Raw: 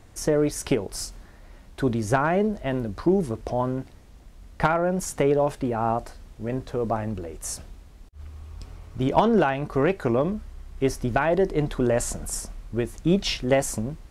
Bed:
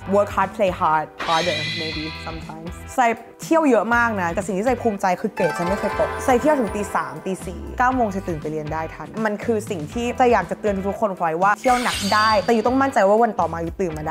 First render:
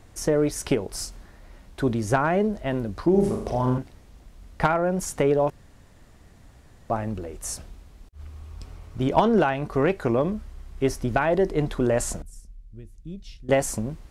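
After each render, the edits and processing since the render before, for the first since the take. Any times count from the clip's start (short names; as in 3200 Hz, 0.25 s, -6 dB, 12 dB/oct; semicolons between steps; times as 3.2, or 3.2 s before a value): 3.1–3.78 flutter echo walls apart 6.8 m, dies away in 0.63 s; 5.5–6.9 room tone; 12.22–13.49 passive tone stack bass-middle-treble 10-0-1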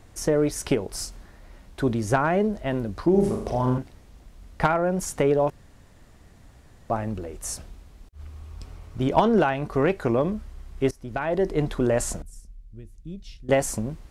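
10.91–11.53 fade in, from -21 dB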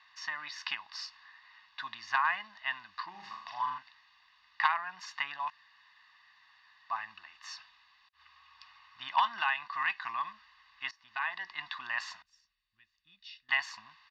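elliptic band-pass 1100–4600 Hz, stop band 40 dB; comb 1.1 ms, depth 80%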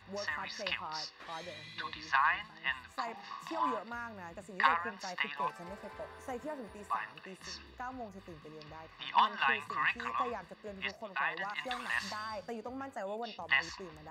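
add bed -24.5 dB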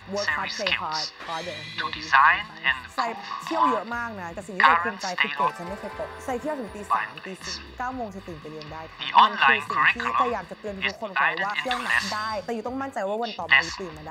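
gain +12 dB; limiter -3 dBFS, peak gain reduction 3 dB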